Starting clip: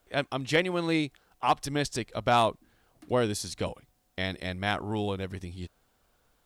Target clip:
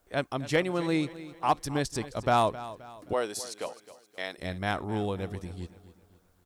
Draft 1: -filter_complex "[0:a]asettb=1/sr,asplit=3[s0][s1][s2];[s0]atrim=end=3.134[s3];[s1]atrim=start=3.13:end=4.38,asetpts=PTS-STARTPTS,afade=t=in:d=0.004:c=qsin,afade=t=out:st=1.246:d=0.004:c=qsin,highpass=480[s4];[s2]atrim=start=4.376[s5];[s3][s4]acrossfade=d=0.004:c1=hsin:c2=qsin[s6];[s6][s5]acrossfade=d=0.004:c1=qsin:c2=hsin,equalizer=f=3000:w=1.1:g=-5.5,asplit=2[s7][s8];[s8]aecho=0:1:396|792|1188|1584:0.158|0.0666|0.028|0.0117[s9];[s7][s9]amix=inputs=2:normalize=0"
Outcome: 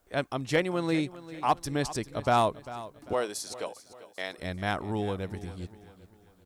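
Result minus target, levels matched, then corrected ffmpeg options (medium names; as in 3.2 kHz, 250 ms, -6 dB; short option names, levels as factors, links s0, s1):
echo 133 ms late
-filter_complex "[0:a]asettb=1/sr,asplit=3[s0][s1][s2];[s0]atrim=end=3.134[s3];[s1]atrim=start=3.13:end=4.38,asetpts=PTS-STARTPTS,afade=t=in:d=0.004:c=qsin,afade=t=out:st=1.246:d=0.004:c=qsin,highpass=480[s4];[s2]atrim=start=4.376[s5];[s3][s4]acrossfade=d=0.004:c1=hsin:c2=qsin[s6];[s6][s5]acrossfade=d=0.004:c1=qsin:c2=hsin,equalizer=f=3000:w=1.1:g=-5.5,asplit=2[s7][s8];[s8]aecho=0:1:263|526|789|1052:0.158|0.0666|0.028|0.0117[s9];[s7][s9]amix=inputs=2:normalize=0"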